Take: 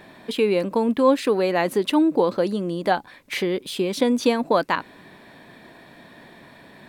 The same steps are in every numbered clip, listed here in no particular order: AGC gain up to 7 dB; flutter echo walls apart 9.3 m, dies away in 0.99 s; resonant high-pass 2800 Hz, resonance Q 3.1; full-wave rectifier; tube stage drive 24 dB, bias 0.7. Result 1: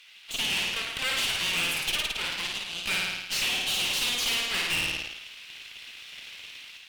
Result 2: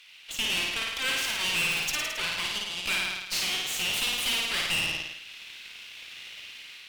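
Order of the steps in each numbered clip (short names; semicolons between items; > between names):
flutter echo > full-wave rectifier > resonant high-pass > AGC > tube stage; full-wave rectifier > resonant high-pass > AGC > flutter echo > tube stage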